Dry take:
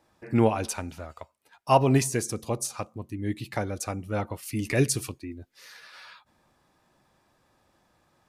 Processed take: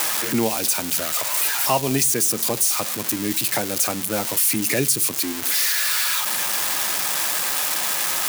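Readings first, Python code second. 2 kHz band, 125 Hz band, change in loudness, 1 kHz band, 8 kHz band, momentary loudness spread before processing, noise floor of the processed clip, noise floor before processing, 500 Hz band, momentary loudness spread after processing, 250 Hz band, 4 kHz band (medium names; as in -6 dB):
+12.5 dB, -4.0 dB, +8.0 dB, +3.0 dB, +15.5 dB, 20 LU, -28 dBFS, -68 dBFS, +1.5 dB, 4 LU, +2.0 dB, +17.5 dB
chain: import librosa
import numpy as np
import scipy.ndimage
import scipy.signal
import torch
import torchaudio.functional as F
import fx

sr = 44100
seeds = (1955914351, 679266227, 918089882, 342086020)

y = x + 0.5 * 10.0 ** (-18.0 / 20.0) * np.diff(np.sign(x), prepend=np.sign(x[:1]))
y = scipy.signal.sosfilt(scipy.signal.butter(4, 140.0, 'highpass', fs=sr, output='sos'), y)
y = fx.band_squash(y, sr, depth_pct=70)
y = y * 10.0 ** (4.5 / 20.0)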